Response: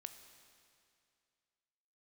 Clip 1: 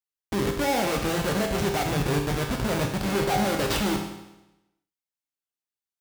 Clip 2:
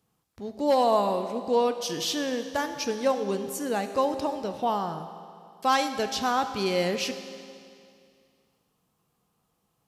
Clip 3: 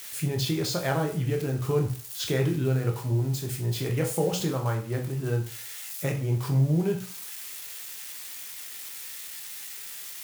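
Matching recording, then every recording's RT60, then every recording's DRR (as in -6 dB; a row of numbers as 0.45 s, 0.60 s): 2; 0.95 s, 2.4 s, 0.40 s; 1.0 dB, 8.0 dB, 2.0 dB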